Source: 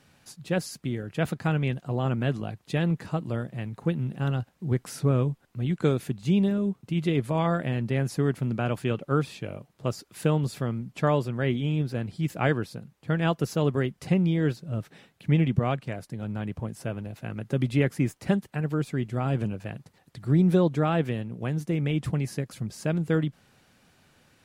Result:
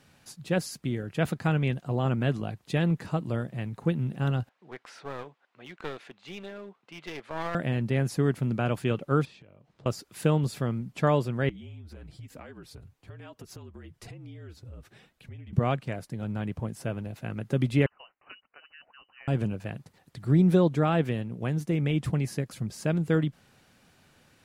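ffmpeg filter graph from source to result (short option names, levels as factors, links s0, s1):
-filter_complex "[0:a]asettb=1/sr,asplit=3[s0][s1][s2];[s0]atrim=end=4.494[s3];[s1]atrim=start=4.49:end=7.55,asetpts=PTS-STARTPTS,afade=t=in:d=0.004:c=qsin,afade=t=out:st=3.056:d=0.004:c=qsin,highpass=720,lowpass=3200,aeval=exprs='clip(val(0),-1,0.00794)':c=same[s4];[s2]atrim=start=7.546[s5];[s3][s4]acrossfade=d=0.004:c1=hsin:c2=qsin[s6];[s6][s5]acrossfade=d=0.004:c1=qsin:c2=hsin,asettb=1/sr,asplit=3[s7][s8][s9];[s7]atrim=end=9.254[s10];[s8]atrim=start=9.25:end=9.86,asetpts=PTS-STARTPTS,afade=t=in:d=0.004:c=qsin,afade=t=out:st=0.606:d=0.004:c=qsin,lowpass=5100,acompressor=threshold=0.00355:ratio=16:attack=3.2:release=140:knee=1:detection=peak[s11];[s9]atrim=start=9.856[s12];[s10][s11]acrossfade=d=0.004:c1=hsin:c2=qsin[s13];[s13][s12]acrossfade=d=0.004:c1=qsin:c2=hsin,asettb=1/sr,asplit=3[s14][s15][s16];[s14]atrim=end=11.494[s17];[s15]atrim=start=11.49:end=15.53,asetpts=PTS-STARTPTS,afade=t=in:d=0.004:c=qsin,afade=t=out:st=4.036:d=0.004:c=qsin,flanger=delay=2.9:depth=4.2:regen=-26:speed=1.1:shape=triangular,acompressor=threshold=0.01:ratio=16:attack=3.2:release=140:knee=1:detection=peak,afreqshift=-48[s18];[s16]atrim=start=15.526[s19];[s17][s18]acrossfade=d=0.004:c1=hsin:c2=qsin[s20];[s20][s19]acrossfade=d=0.004:c1=qsin:c2=hsin,asettb=1/sr,asplit=3[s21][s22][s23];[s21]atrim=end=17.864[s24];[s22]atrim=start=17.86:end=19.28,asetpts=PTS-STARTPTS,afade=t=in:d=0.004:c=qsin,afade=t=out:st=1.416:d=0.004:c=qsin,aderivative,lowpass=f=2600:t=q:w=0.5098,lowpass=f=2600:t=q:w=0.6013,lowpass=f=2600:t=q:w=0.9,lowpass=f=2600:t=q:w=2.563,afreqshift=-3100[s25];[s23]atrim=start=19.276[s26];[s24][s25]acrossfade=d=0.004:c1=hsin:c2=qsin[s27];[s27][s26]acrossfade=d=0.004:c1=qsin:c2=hsin"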